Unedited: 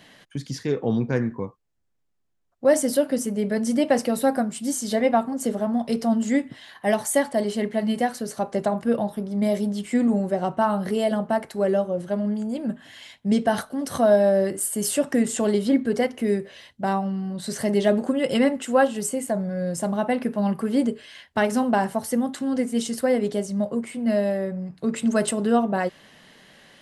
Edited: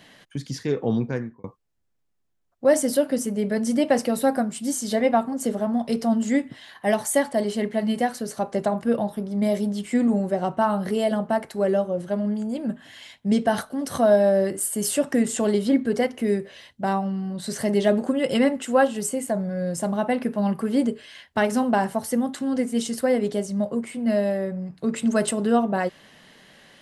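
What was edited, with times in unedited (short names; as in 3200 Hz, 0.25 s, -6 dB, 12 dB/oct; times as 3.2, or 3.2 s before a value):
0.97–1.44 fade out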